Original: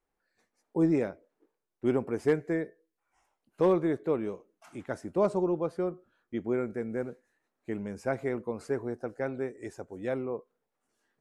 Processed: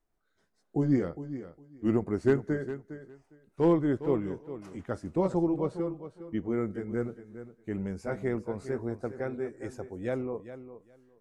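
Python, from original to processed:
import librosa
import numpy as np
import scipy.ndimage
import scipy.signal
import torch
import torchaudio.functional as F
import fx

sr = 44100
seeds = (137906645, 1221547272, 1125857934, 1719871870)

y = fx.pitch_glide(x, sr, semitones=-2.5, runs='ending unshifted')
y = fx.low_shelf(y, sr, hz=130.0, db=10.0)
y = fx.echo_feedback(y, sr, ms=408, feedback_pct=17, wet_db=-12.5)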